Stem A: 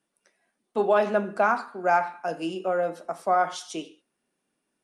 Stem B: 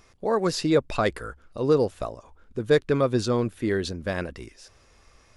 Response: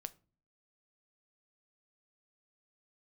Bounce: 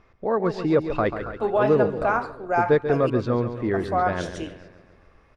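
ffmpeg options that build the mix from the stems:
-filter_complex "[0:a]highshelf=frequency=7100:gain=-11,adelay=650,volume=-0.5dB,asplit=3[link_01][link_02][link_03];[link_01]atrim=end=3.1,asetpts=PTS-STARTPTS,afade=type=out:start_time=3.096:duration=0.004:curve=hsin[link_04];[link_02]atrim=start=3.1:end=3.72,asetpts=PTS-STARTPTS,volume=0[link_05];[link_03]atrim=start=3.72,asetpts=PTS-STARTPTS,afade=type=in:duration=0.004:curve=hsin[link_06];[link_04][link_05][link_06]concat=n=3:v=0:a=1[link_07];[1:a]lowpass=2100,volume=0.5dB,asplit=2[link_08][link_09];[link_09]volume=-10dB,aecho=0:1:139|278|417|556|695|834|973|1112|1251:1|0.57|0.325|0.185|0.106|0.0602|0.0343|0.0195|0.0111[link_10];[link_07][link_08][link_10]amix=inputs=3:normalize=0"

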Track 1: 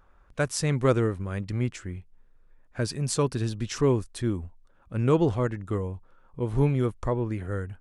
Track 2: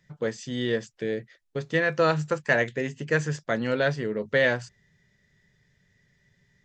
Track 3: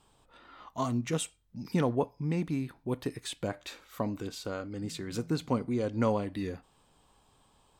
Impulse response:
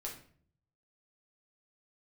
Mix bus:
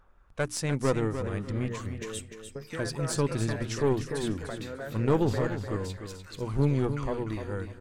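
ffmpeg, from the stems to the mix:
-filter_complex "[0:a]bandreject=frequency=60:width_type=h:width=6,bandreject=frequency=120:width_type=h:width=6,bandreject=frequency=180:width_type=h:width=6,bandreject=frequency=240:width_type=h:width=6,bandreject=frequency=300:width_type=h:width=6,aphaser=in_gain=1:out_gain=1:delay=4.1:decay=0.23:speed=0.59:type=sinusoidal,aeval=exprs='(tanh(5.62*val(0)+0.5)-tanh(0.5))/5.62':channel_layout=same,volume=-1.5dB,asplit=2[link_01][link_02];[link_02]volume=-9dB[link_03];[1:a]acompressor=threshold=-33dB:ratio=4,lowpass=frequency=1800:width=0.5412,lowpass=frequency=1800:width=1.3066,adelay=1000,volume=-4dB,asplit=2[link_04][link_05];[link_05]volume=-7.5dB[link_06];[2:a]highpass=frequency=1200:width=0.5412,highpass=frequency=1200:width=1.3066,adelay=950,volume=-3.5dB,asplit=2[link_07][link_08];[link_08]volume=-8.5dB[link_09];[link_03][link_06][link_09]amix=inputs=3:normalize=0,aecho=0:1:298|596|894|1192:1|0.25|0.0625|0.0156[link_10];[link_01][link_04][link_07][link_10]amix=inputs=4:normalize=0"

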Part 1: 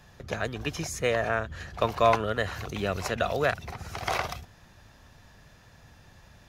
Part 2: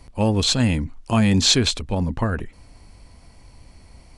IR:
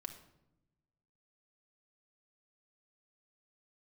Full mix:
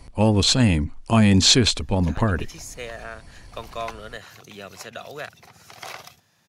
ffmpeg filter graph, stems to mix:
-filter_complex "[0:a]highpass=frequency=110:width=0.5412,highpass=frequency=110:width=1.3066,highshelf=frequency=2700:gain=10,adelay=1750,volume=-10.5dB[link_01];[1:a]volume=1.5dB[link_02];[link_01][link_02]amix=inputs=2:normalize=0"

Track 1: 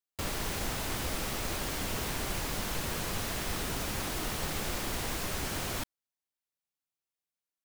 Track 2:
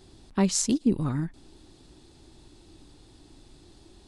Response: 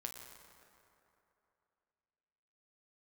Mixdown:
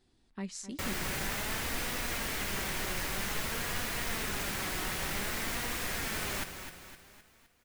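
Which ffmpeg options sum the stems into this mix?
-filter_complex "[0:a]acrusher=bits=5:mix=0:aa=0.000001,adelay=600,volume=1dB,asplit=2[link_01][link_02];[link_02]volume=-9dB[link_03];[1:a]volume=-13dB,asplit=2[link_04][link_05];[link_05]volume=-15.5dB[link_06];[link_03][link_06]amix=inputs=2:normalize=0,aecho=0:1:257|514|771|1028|1285|1542|1799:1|0.48|0.23|0.111|0.0531|0.0255|0.0122[link_07];[link_01][link_04][link_07]amix=inputs=3:normalize=0,equalizer=frequency=1900:width_type=o:width=0.99:gain=6.5,flanger=delay=4.1:depth=1.3:regen=68:speed=0.52:shape=sinusoidal"

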